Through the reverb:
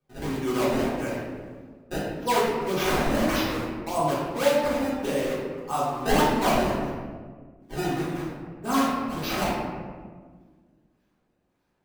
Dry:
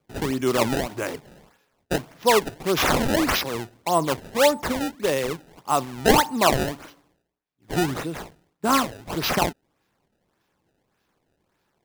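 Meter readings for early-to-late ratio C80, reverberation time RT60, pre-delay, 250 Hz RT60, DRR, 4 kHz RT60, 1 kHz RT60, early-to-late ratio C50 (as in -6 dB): 1.5 dB, 1.6 s, 3 ms, 2.3 s, -9.0 dB, 0.85 s, 1.5 s, -0.5 dB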